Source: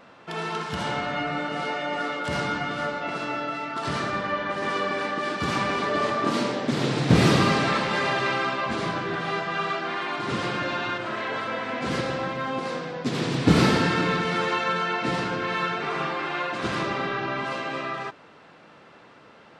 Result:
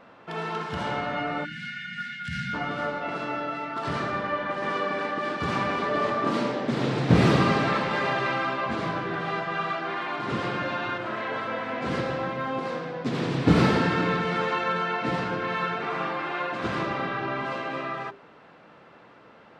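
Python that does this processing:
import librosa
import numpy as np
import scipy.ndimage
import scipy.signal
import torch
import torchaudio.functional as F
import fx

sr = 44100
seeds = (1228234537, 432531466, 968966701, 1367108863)

y = fx.spec_erase(x, sr, start_s=1.44, length_s=1.1, low_hz=240.0, high_hz=1400.0)
y = fx.high_shelf(y, sr, hz=4000.0, db=-11.5)
y = fx.hum_notches(y, sr, base_hz=50, count=8)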